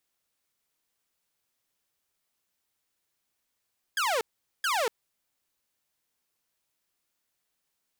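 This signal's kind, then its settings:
repeated falling chirps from 1,700 Hz, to 420 Hz, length 0.24 s saw, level −22 dB, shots 2, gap 0.43 s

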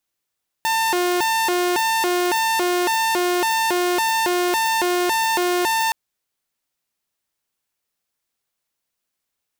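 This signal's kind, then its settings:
siren hi-lo 356–897 Hz 1.8 per second saw −15 dBFS 5.27 s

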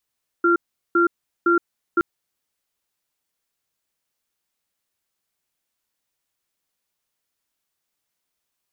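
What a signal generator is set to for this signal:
tone pair in a cadence 343 Hz, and 1,380 Hz, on 0.12 s, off 0.39 s, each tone −16.5 dBFS 1.57 s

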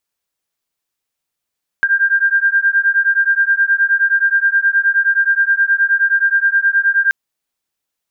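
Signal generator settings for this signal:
two tones that beat 1,590 Hz, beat 9.5 Hz, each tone −14 dBFS 5.28 s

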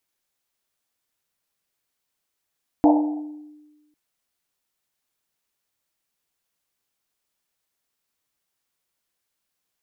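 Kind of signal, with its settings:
drum after Risset, pitch 300 Hz, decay 1.29 s, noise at 750 Hz, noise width 270 Hz, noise 30%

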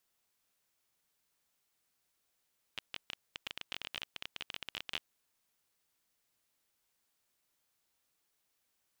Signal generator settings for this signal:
Geiger counter clicks 19 per second −22 dBFS 2.45 s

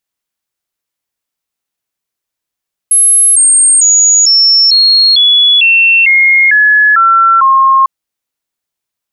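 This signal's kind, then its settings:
stepped sweep 10,800 Hz down, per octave 3, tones 11, 0.45 s, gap 0.00 s −3.5 dBFS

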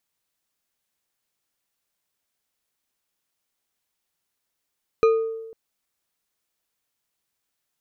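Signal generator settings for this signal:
struck glass bar, length 0.50 s, lowest mode 449 Hz, decay 1.08 s, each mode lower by 9 dB, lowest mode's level −12 dB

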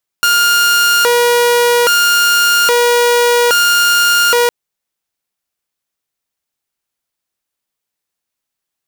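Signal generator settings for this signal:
siren hi-lo 480–1,410 Hz 0.61 per second saw −6 dBFS 4.26 s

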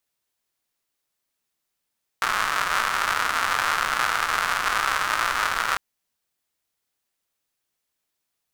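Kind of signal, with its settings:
rain-like ticks over hiss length 3.55 s, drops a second 220, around 1,300 Hz, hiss −19 dB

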